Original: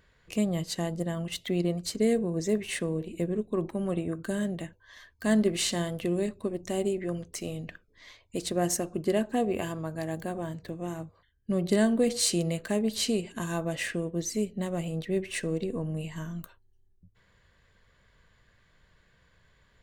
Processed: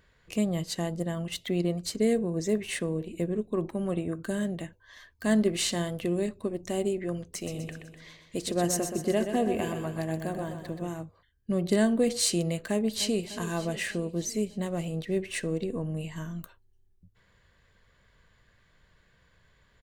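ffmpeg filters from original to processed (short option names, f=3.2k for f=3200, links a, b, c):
-filter_complex "[0:a]asettb=1/sr,asplit=3[a][b][c];[a]atrim=end=7.224[d];[b]atrim=start=7.22:end=10.89,asetpts=PTS-STARTPTS,afade=t=in:d=0.004:c=qsin,afade=t=out:st=3.666:d=0.004:c=qsin,aecho=1:1:125|250|375|500|625|750|875:0.398|0.219|0.12|0.0662|0.0364|0.02|0.011,atrim=end_sample=161847[e];[c]atrim=start=10.886[f];[d][e]acrossfade=d=0.004:c1=hsin:c2=qsin[g];[g][f]acrossfade=d=0.004:c1=qsin:c2=hsin,asplit=2[h][i];[i]afade=t=in:st=12.69:d=0.01,afade=t=out:st=13.29:d=0.01,aecho=0:1:300|600|900|1200|1500|1800|2100|2400:0.211349|0.137377|0.0892949|0.0580417|0.0377271|0.0245226|0.0159397|0.0103608[j];[h][j]amix=inputs=2:normalize=0"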